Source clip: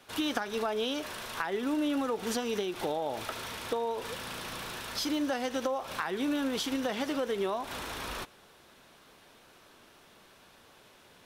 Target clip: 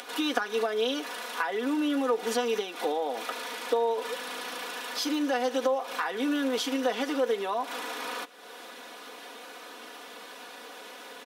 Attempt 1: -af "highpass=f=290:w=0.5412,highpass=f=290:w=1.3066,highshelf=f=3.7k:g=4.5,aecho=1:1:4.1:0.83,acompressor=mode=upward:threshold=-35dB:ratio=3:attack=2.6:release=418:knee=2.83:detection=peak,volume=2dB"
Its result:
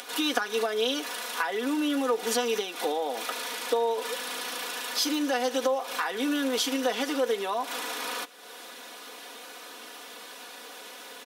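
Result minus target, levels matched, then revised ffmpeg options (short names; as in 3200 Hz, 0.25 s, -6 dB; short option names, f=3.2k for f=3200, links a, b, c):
8000 Hz band +5.0 dB
-af "highpass=f=290:w=0.5412,highpass=f=290:w=1.3066,highshelf=f=3.7k:g=-3.5,aecho=1:1:4.1:0.83,acompressor=mode=upward:threshold=-35dB:ratio=3:attack=2.6:release=418:knee=2.83:detection=peak,volume=2dB"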